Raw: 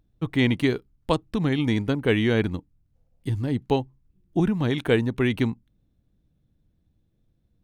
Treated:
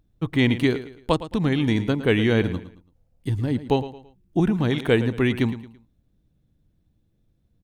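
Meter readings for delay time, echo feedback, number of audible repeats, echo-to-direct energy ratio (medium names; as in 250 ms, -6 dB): 111 ms, 34%, 3, -13.5 dB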